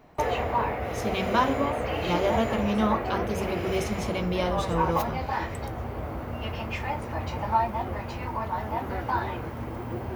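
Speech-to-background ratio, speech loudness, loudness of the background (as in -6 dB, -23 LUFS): 1.0 dB, -29.0 LUFS, -30.0 LUFS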